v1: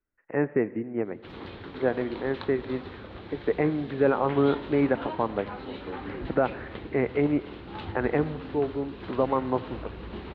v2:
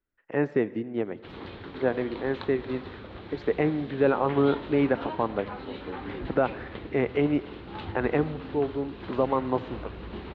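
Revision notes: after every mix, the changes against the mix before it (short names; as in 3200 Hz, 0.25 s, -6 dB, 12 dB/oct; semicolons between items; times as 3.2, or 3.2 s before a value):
speech: remove steep low-pass 2500 Hz 48 dB/oct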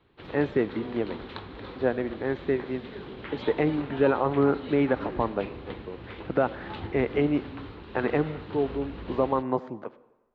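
background: entry -1.05 s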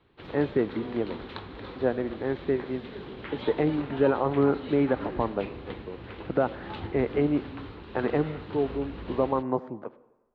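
speech: add high shelf 2300 Hz -10.5 dB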